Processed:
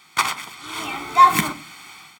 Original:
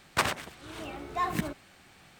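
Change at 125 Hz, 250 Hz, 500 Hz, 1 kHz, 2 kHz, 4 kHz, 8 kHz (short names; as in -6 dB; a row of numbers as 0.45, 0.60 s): +4.0, +6.0, +2.5, +17.0, +9.5, +10.0, +11.5 dB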